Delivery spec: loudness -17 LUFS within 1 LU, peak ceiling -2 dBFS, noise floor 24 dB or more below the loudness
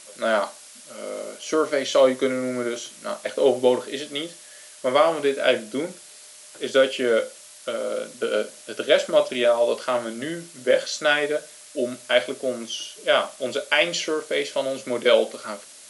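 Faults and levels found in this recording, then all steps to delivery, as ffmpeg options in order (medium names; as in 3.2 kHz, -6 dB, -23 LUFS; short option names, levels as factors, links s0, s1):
noise floor -46 dBFS; noise floor target -48 dBFS; loudness -23.5 LUFS; peak level -4.0 dBFS; loudness target -17.0 LUFS
-> -af "afftdn=nr=6:nf=-46"
-af "volume=2.11,alimiter=limit=0.794:level=0:latency=1"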